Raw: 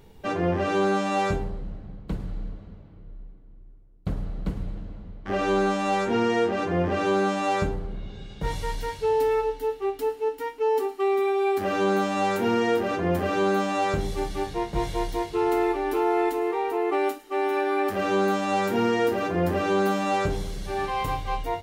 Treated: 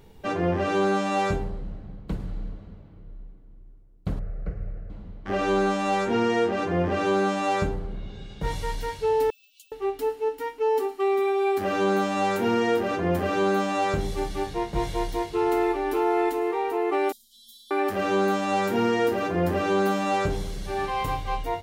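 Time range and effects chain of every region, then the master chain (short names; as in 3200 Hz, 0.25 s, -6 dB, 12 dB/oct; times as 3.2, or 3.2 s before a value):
4.19–4.9 air absorption 230 m + fixed phaser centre 940 Hz, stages 6
9.3–9.72 compressor 8:1, threshold -34 dBFS + careless resampling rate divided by 2×, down none, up hold + brick-wall FIR high-pass 2300 Hz
17.12–17.71 brick-wall FIR band-stop 210–3100 Hz + high shelf 8100 Hz +5.5 dB + robotiser 232 Hz
whole clip: dry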